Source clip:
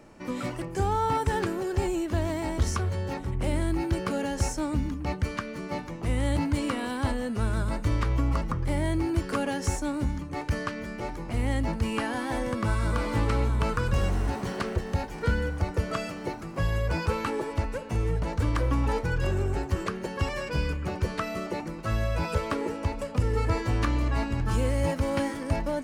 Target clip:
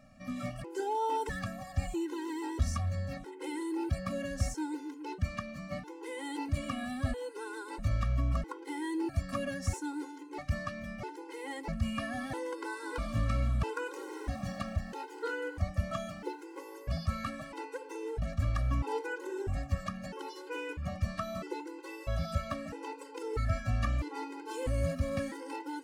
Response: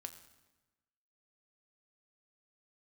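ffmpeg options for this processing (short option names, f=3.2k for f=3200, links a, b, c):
-af "afftfilt=real='re*gt(sin(2*PI*0.77*pts/sr)*(1-2*mod(floor(b*sr/1024/270),2)),0)':imag='im*gt(sin(2*PI*0.77*pts/sr)*(1-2*mod(floor(b*sr/1024/270),2)),0)':win_size=1024:overlap=0.75,volume=-4dB"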